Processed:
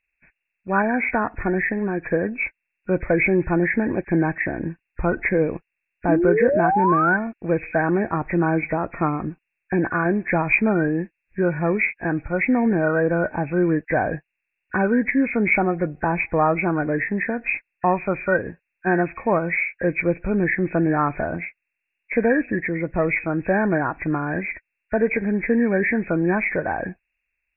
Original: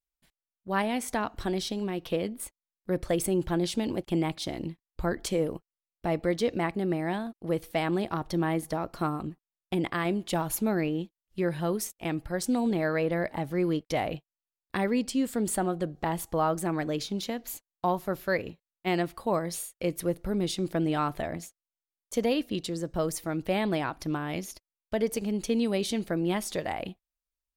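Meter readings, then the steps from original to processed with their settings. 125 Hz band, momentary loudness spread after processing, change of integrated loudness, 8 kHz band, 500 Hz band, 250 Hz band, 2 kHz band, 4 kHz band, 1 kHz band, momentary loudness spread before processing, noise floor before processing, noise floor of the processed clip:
+7.5 dB, 9 LU, +8.5 dB, below −40 dB, +8.0 dB, +7.5 dB, +14.5 dB, below −40 dB, +9.0 dB, 8 LU, below −85 dBFS, −81 dBFS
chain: hearing-aid frequency compression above 1,400 Hz 4 to 1
sound drawn into the spectrogram rise, 0:06.08–0:07.17, 280–1,600 Hz −27 dBFS
tape wow and flutter 23 cents
level +7.5 dB

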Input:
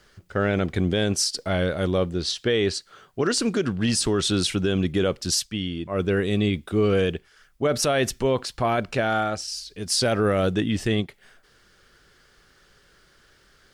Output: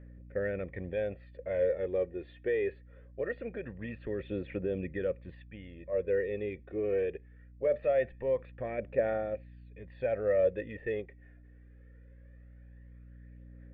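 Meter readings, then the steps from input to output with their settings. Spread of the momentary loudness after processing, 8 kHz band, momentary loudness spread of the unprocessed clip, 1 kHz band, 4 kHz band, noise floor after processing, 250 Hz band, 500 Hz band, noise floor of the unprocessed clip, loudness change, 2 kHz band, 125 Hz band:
19 LU, below −40 dB, 6 LU, −16.5 dB, below −30 dB, −54 dBFS, −16.5 dB, −6.0 dB, −59 dBFS, −9.5 dB, −12.5 dB, −17.0 dB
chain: formant resonators in series e
mains hum 60 Hz, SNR 20 dB
phase shifter 0.22 Hz, delay 2.9 ms, feedback 45%

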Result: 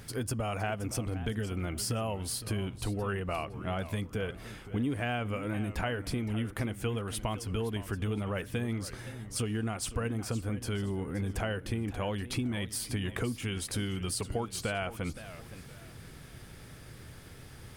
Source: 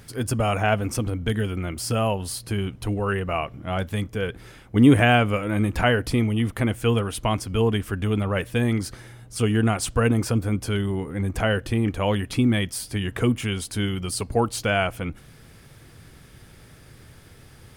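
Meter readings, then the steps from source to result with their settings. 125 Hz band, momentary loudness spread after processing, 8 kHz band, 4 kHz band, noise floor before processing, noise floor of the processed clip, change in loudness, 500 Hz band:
−10.0 dB, 15 LU, −5.5 dB, −9.0 dB, −49 dBFS, −49 dBFS, −10.5 dB, −11.0 dB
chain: downward compressor 5 to 1, threshold −30 dBFS, peak gain reduction 18 dB
feedback echo with a swinging delay time 517 ms, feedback 33%, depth 163 cents, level −14 dB
level −1 dB

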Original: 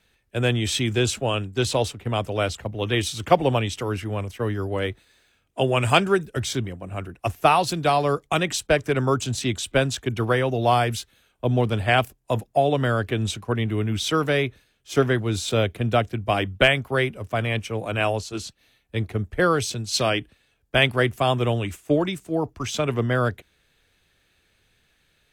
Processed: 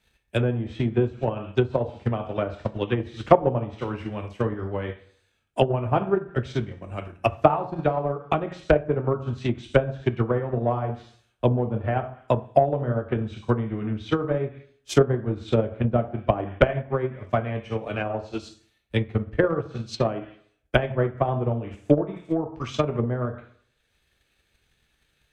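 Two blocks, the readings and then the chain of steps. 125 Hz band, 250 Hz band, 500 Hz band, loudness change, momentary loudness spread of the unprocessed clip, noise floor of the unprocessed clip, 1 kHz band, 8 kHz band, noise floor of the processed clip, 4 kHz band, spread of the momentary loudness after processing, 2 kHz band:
−1.0 dB, −0.5 dB, −0.5 dB, −2.0 dB, 9 LU, −66 dBFS, −3.5 dB, below −15 dB, −70 dBFS, −13.0 dB, 9 LU, −8.5 dB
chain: dense smooth reverb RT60 0.57 s, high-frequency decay 0.75×, DRR 2.5 dB
treble cut that deepens with the level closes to 870 Hz, closed at −17 dBFS
transient designer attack +10 dB, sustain −4 dB
level −6 dB

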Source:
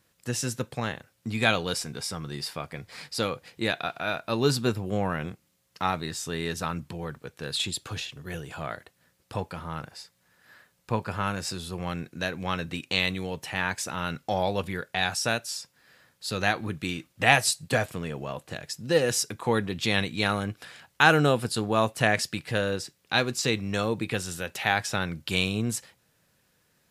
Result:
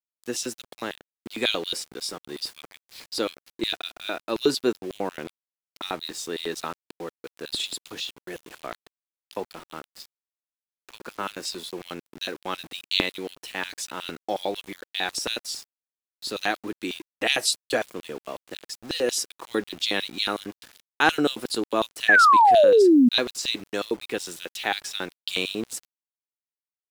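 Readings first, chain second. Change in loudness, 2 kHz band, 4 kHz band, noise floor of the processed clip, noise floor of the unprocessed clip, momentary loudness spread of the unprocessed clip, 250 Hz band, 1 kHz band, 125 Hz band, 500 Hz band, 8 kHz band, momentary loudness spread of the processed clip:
+3.0 dB, +1.0 dB, +3.0 dB, below −85 dBFS, −69 dBFS, 13 LU, +3.5 dB, +5.0 dB, −15.5 dB, +3.5 dB, −0.5 dB, 19 LU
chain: auto-filter high-pass square 5.5 Hz 320–3,500 Hz
sound drawn into the spectrogram fall, 0:22.08–0:23.09, 230–1,800 Hz −13 dBFS
centre clipping without the shift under −39.5 dBFS
level −1.5 dB

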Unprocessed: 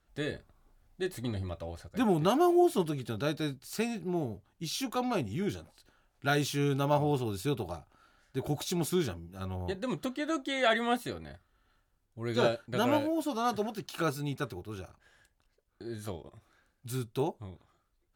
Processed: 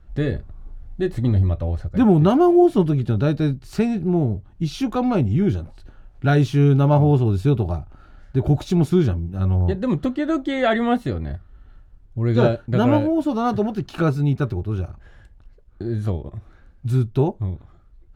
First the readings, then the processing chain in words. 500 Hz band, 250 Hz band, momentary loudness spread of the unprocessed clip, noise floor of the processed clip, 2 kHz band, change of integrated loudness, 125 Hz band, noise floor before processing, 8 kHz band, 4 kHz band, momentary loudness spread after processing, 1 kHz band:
+9.5 dB, +13.0 dB, 15 LU, −49 dBFS, +4.5 dB, +12.0 dB, +17.5 dB, −74 dBFS, can't be measured, +1.0 dB, 13 LU, +7.0 dB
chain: RIAA equalisation playback
in parallel at −2 dB: downward compressor, threshold −38 dBFS, peak gain reduction 20 dB
on the sum: floating-point word with a short mantissa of 8 bits
level +5.5 dB

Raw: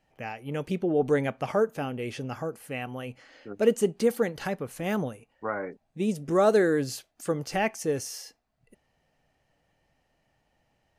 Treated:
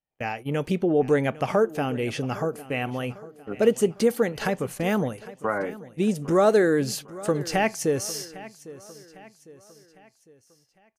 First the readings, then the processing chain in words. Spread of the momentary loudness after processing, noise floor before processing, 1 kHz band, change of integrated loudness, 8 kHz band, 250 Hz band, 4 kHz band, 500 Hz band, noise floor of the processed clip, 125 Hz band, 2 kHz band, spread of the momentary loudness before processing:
13 LU, −73 dBFS, +4.0 dB, +3.5 dB, +5.5 dB, +4.0 dB, +5.0 dB, +3.0 dB, −64 dBFS, +4.5 dB, +4.0 dB, 14 LU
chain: noise gate −42 dBFS, range −30 dB
in parallel at +1.5 dB: downward compressor, threshold −30 dBFS, peak gain reduction 14 dB
on the sum: repeating echo 804 ms, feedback 46%, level −18 dB

